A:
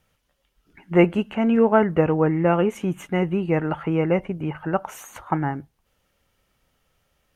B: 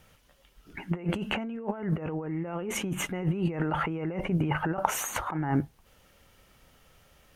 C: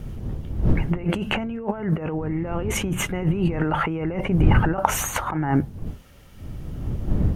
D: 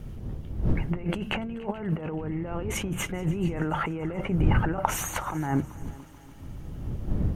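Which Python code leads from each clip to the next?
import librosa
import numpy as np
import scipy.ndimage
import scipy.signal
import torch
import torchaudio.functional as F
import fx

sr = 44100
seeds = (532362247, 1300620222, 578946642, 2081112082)

y1 = fx.over_compress(x, sr, threshold_db=-31.0, ratio=-1.0)
y2 = fx.dmg_wind(y1, sr, seeds[0], corner_hz=120.0, level_db=-32.0)
y2 = y2 * 10.0 ** (6.0 / 20.0)
y3 = fx.echo_heads(y2, sr, ms=144, heads='second and third', feedback_pct=55, wet_db=-21.5)
y3 = y3 * 10.0 ** (-5.5 / 20.0)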